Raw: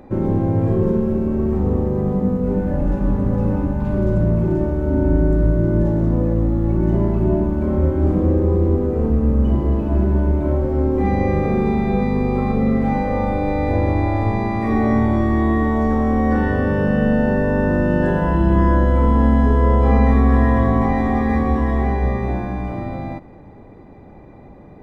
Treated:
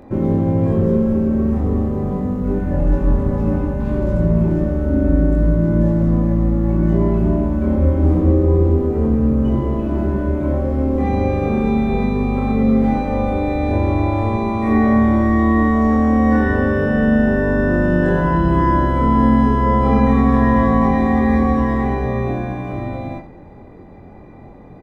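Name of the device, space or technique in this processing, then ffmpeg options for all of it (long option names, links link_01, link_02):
slapback doubling: -filter_complex "[0:a]asplit=3[link_01][link_02][link_03];[link_02]adelay=23,volume=-3dB[link_04];[link_03]adelay=89,volume=-11dB[link_05];[link_01][link_04][link_05]amix=inputs=3:normalize=0"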